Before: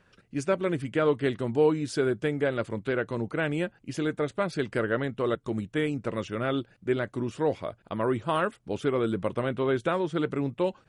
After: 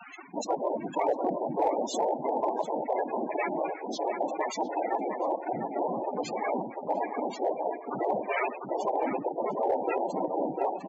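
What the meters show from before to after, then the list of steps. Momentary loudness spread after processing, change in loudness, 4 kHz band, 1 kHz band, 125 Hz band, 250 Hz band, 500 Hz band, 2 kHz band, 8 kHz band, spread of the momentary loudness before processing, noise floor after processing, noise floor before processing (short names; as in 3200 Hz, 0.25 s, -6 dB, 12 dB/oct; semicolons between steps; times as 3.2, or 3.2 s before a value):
4 LU, -2.0 dB, -5.5 dB, +6.0 dB, -16.5 dB, -6.0 dB, -2.0 dB, -6.5 dB, +2.0 dB, 6 LU, -42 dBFS, -64 dBFS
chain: low shelf 450 Hz -6.5 dB; resonator 400 Hz, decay 0.45 s, mix 50%; spectral gate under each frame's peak -30 dB strong; high shelf 6300 Hz +2 dB; noise vocoder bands 4; HPF 300 Hz 12 dB/oct; on a send: echo 97 ms -22.5 dB; on the sum: loudest bins only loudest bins 16; outdoor echo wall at 120 m, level -9 dB; in parallel at -7 dB: hard clip -30 dBFS, distortion -16 dB; on the sum: fast leveller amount 50%; gain +3 dB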